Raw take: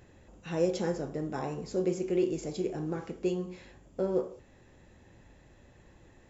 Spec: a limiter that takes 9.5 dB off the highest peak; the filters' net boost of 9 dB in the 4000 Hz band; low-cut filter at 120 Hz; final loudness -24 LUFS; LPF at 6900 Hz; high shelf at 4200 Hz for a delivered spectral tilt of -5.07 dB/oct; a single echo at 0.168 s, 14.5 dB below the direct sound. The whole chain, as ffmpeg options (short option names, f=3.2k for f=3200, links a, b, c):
-af "highpass=120,lowpass=6.9k,equalizer=f=4k:t=o:g=7.5,highshelf=f=4.2k:g=8,alimiter=level_in=1dB:limit=-24dB:level=0:latency=1,volume=-1dB,aecho=1:1:168:0.188,volume=12dB"